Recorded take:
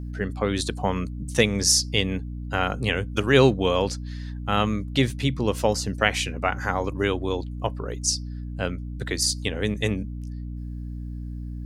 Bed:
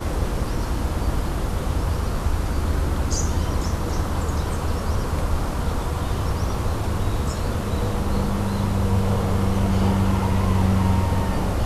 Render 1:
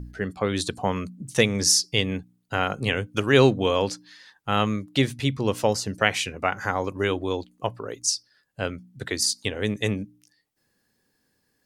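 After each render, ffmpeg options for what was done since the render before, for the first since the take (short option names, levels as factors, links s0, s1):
-af "bandreject=f=60:t=h:w=4,bandreject=f=120:t=h:w=4,bandreject=f=180:t=h:w=4,bandreject=f=240:t=h:w=4,bandreject=f=300:t=h:w=4"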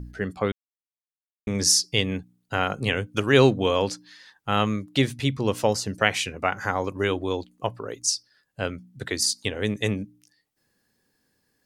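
-filter_complex "[0:a]asplit=3[s0][s1][s2];[s0]atrim=end=0.52,asetpts=PTS-STARTPTS,afade=t=out:st=0.516:d=0.004:c=hsin[s3];[s1]atrim=start=0.52:end=1.47,asetpts=PTS-STARTPTS,volume=0[s4];[s2]atrim=start=1.47,asetpts=PTS-STARTPTS,afade=t=in:d=0.004:c=hsin[s5];[s3][s4][s5]concat=n=3:v=0:a=1"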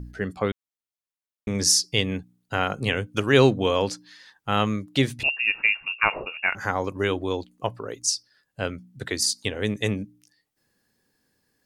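-filter_complex "[0:a]asettb=1/sr,asplit=3[s0][s1][s2];[s0]atrim=end=5.234[s3];[s1]atrim=start=5.23:end=6.55,asetpts=PTS-STARTPTS,afade=t=in:d=0.004:c=qsin,afade=t=out:st=1.316:d=0.004:c=qsin,lowpass=f=2500:t=q:w=0.5098,lowpass=f=2500:t=q:w=0.6013,lowpass=f=2500:t=q:w=0.9,lowpass=f=2500:t=q:w=2.563,afreqshift=-2900[s4];[s2]atrim=start=6.546[s5];[s3][s4]acrossfade=d=0.004:c1=hsin:c2=qsin[s6];[s6][s5]acrossfade=d=0.004:c1=qsin:c2=hsin"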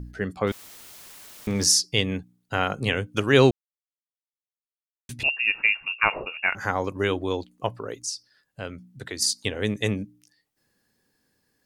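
-filter_complex "[0:a]asettb=1/sr,asplit=3[s0][s1][s2];[s0]atrim=end=0.474[s3];[s1]atrim=start=0.47:end=1.66,asetpts=PTS-STARTPTS,afade=t=in:d=0.004:c=qsin,afade=t=out:st=1.186:d=0.004:c=qsin,aeval=exprs='val(0)+0.5*0.0158*sgn(val(0))':c=same[s4];[s2]atrim=start=1.656[s5];[s3][s4]acrossfade=d=0.004:c1=hsin:c2=qsin[s6];[s6][s5]acrossfade=d=0.004:c1=qsin:c2=hsin,asplit=3[s7][s8][s9];[s7]afade=t=out:st=7.99:d=0.02[s10];[s8]acompressor=threshold=0.0112:ratio=1.5:attack=3.2:release=140:knee=1:detection=peak,afade=t=in:st=7.99:d=0.02,afade=t=out:st=9.2:d=0.02[s11];[s9]afade=t=in:st=9.2:d=0.02[s12];[s10][s11][s12]amix=inputs=3:normalize=0,asplit=3[s13][s14][s15];[s13]atrim=end=3.51,asetpts=PTS-STARTPTS,afade=t=out:st=3.506:d=0.004:c=hsin[s16];[s14]atrim=start=3.51:end=5.09,asetpts=PTS-STARTPTS,volume=0[s17];[s15]atrim=start=5.09,asetpts=PTS-STARTPTS,afade=t=in:d=0.004:c=hsin[s18];[s16][s17][s18]concat=n=3:v=0:a=1"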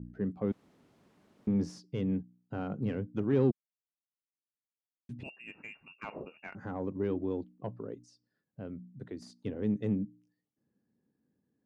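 -af "asoftclip=type=tanh:threshold=0.178,bandpass=f=210:t=q:w=1.3:csg=0"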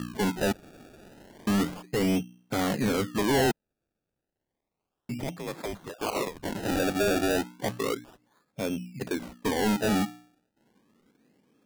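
-filter_complex "[0:a]asplit=2[s0][s1];[s1]highpass=f=720:p=1,volume=25.1,asoftclip=type=tanh:threshold=0.15[s2];[s0][s2]amix=inputs=2:normalize=0,lowpass=f=1400:p=1,volume=0.501,acrusher=samples=29:mix=1:aa=0.000001:lfo=1:lforange=29:lforate=0.32"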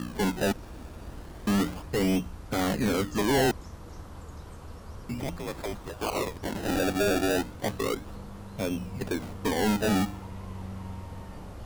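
-filter_complex "[1:a]volume=0.106[s0];[0:a][s0]amix=inputs=2:normalize=0"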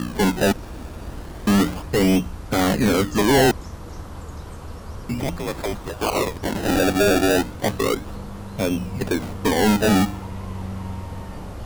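-af "volume=2.51"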